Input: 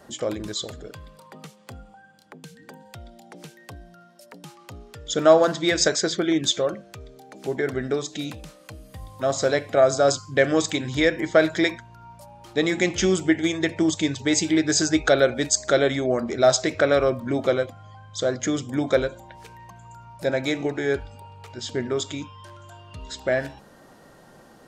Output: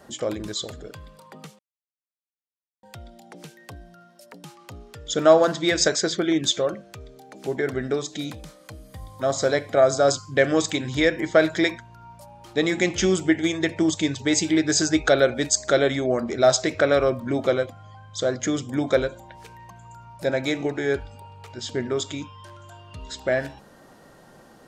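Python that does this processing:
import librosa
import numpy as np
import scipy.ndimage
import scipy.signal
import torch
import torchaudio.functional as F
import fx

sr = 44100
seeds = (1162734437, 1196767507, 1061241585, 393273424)

y = fx.notch(x, sr, hz=2700.0, q=8.8, at=(8.14, 10.14))
y = fx.edit(y, sr, fx.silence(start_s=1.59, length_s=1.24), tone=tone)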